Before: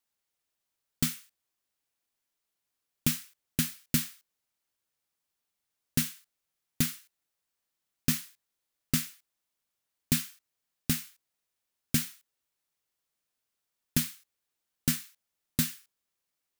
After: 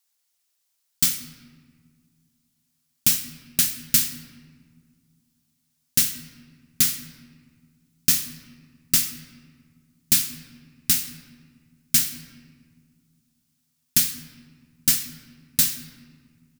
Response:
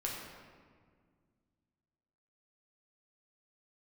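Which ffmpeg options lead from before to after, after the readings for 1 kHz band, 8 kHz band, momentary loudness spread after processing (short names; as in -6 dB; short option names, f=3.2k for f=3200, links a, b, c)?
+3.5 dB, +12.0 dB, 16 LU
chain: -filter_complex "[0:a]firequalizer=gain_entry='entry(390,0);entry(790,5);entry(5100,15)':delay=0.05:min_phase=1,asplit=2[a][b];[1:a]atrim=start_sample=2205[c];[b][c]afir=irnorm=-1:irlink=0,volume=-6dB[d];[a][d]amix=inputs=2:normalize=0,volume=-6dB"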